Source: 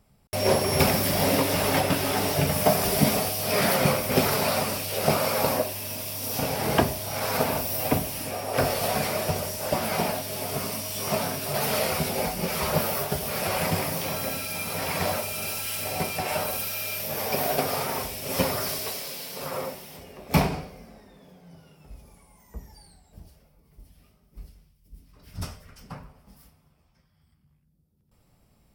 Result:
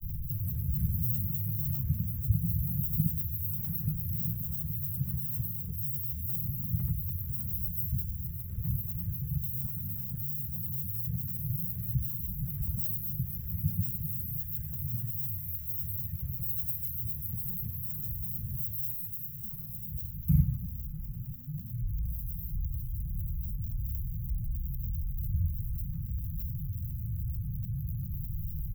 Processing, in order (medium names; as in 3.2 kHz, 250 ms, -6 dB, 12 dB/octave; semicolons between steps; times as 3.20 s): jump at every zero crossing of -24 dBFS; granulator, pitch spread up and down by 7 st; inverse Chebyshev band-stop 290–9500 Hz, stop band 40 dB